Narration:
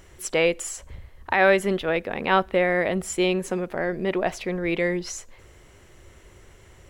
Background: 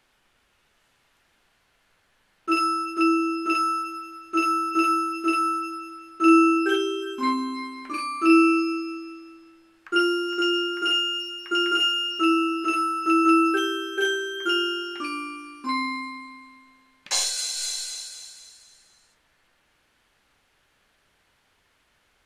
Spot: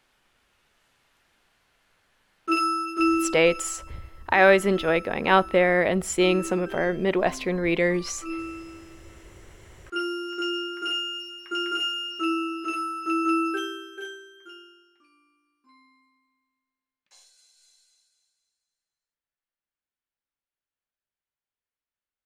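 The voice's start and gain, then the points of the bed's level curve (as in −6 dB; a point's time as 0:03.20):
3.00 s, +1.5 dB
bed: 0:03.21 −1 dB
0:03.64 −17 dB
0:09.01 −17 dB
0:10.26 −5.5 dB
0:13.60 −5.5 dB
0:15.06 −32 dB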